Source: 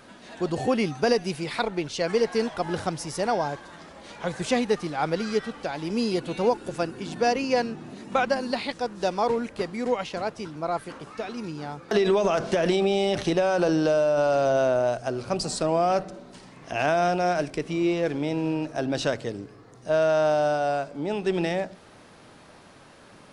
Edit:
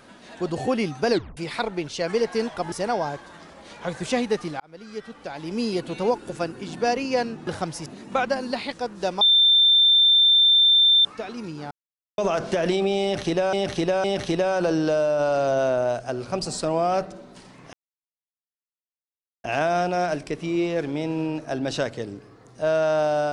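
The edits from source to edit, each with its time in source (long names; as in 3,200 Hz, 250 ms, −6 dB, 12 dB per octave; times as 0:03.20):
0:01.11: tape stop 0.26 s
0:02.72–0:03.11: move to 0:07.86
0:04.99–0:06.05: fade in linear
0:09.21–0:11.05: beep over 3,570 Hz −13 dBFS
0:11.71–0:12.18: silence
0:13.02–0:13.53: repeat, 3 plays
0:16.71: splice in silence 1.71 s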